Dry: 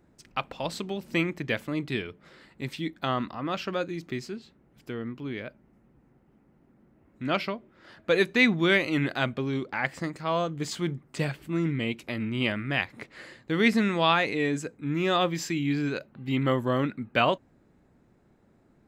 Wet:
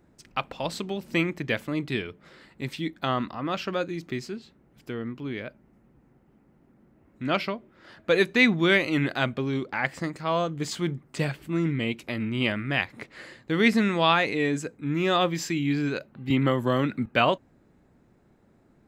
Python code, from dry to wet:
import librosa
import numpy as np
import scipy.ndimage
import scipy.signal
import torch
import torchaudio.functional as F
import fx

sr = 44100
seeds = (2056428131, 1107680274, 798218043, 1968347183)

y = fx.band_squash(x, sr, depth_pct=100, at=(16.3, 17.06))
y = F.gain(torch.from_numpy(y), 1.5).numpy()